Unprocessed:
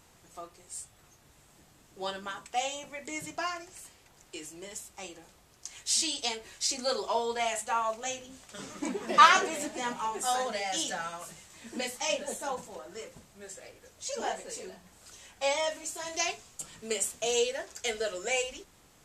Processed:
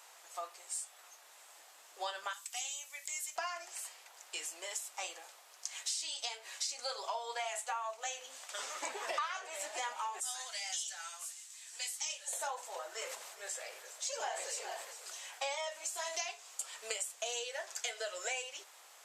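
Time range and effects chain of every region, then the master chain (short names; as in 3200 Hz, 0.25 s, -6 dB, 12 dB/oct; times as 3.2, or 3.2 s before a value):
2.33–3.36 differentiator + three-band squash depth 40%
10.2–12.33 LPF 10000 Hz + differentiator
12.91–15.55 echo 0.41 s -16 dB + sustainer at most 44 dB/s
whole clip: HPF 610 Hz 24 dB/oct; compressor 10:1, threshold -40 dBFS; gain +4.5 dB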